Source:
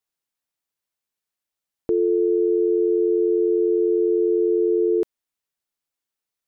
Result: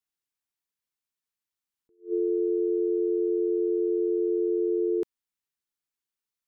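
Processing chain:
parametric band 610 Hz −9 dB 0.6 octaves
level that may rise only so fast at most 260 dB per second
level −4.5 dB

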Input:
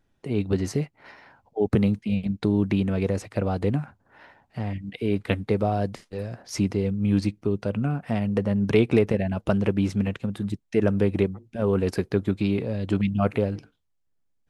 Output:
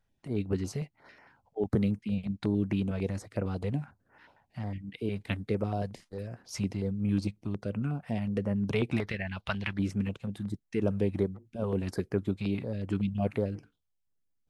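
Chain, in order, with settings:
0:09.00–0:09.79: octave-band graphic EQ 125/250/500/1,000/2,000/4,000/8,000 Hz −3/−7/−9/+3/+9/+11/−7 dB
notch on a step sequencer 11 Hz 310–3,800 Hz
level −6 dB

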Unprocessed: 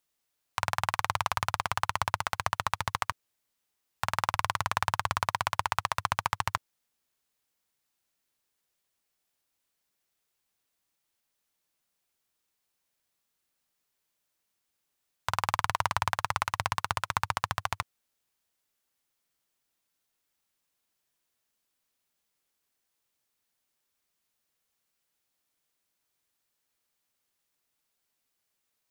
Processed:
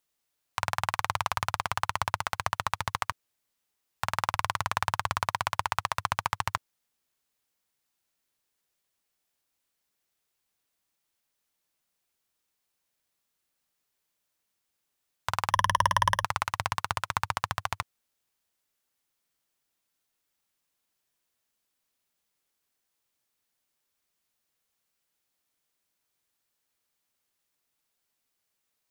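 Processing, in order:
0:15.50–0:16.24: EQ curve with evenly spaced ripples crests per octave 1.2, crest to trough 17 dB

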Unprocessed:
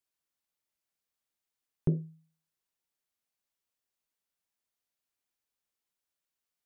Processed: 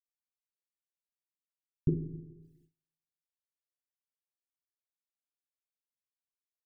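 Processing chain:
spectral envelope exaggerated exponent 3
dynamic equaliser 170 Hz, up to −5 dB, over −43 dBFS, Q 4.8
Butterworth band-reject 1,100 Hz, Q 1.2
four-comb reverb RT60 1.2 s, combs from 29 ms, DRR 7 dB
noise gate with hold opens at −57 dBFS
level +1 dB

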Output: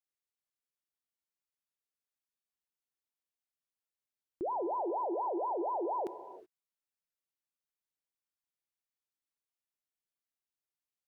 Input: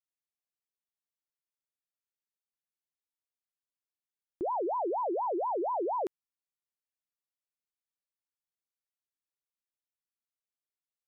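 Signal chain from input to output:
reverb whose tail is shaped and stops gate 400 ms flat, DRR 10.5 dB
level −3 dB

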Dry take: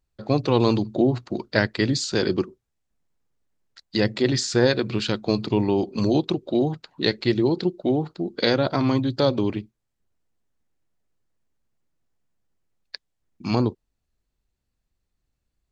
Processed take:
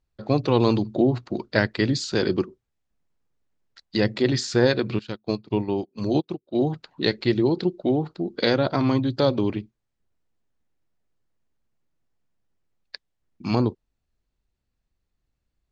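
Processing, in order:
high-frequency loss of the air 58 metres
0:04.99–0:06.59: expander for the loud parts 2.5 to 1, over −37 dBFS

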